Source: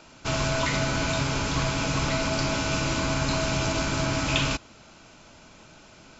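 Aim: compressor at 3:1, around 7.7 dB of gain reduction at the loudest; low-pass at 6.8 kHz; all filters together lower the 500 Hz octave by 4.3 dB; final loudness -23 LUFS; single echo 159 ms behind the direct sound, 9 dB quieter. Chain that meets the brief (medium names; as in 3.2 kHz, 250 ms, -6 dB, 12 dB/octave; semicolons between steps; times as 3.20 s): low-pass 6.8 kHz; peaking EQ 500 Hz -6.5 dB; compression 3:1, threshold -33 dBFS; delay 159 ms -9 dB; trim +11 dB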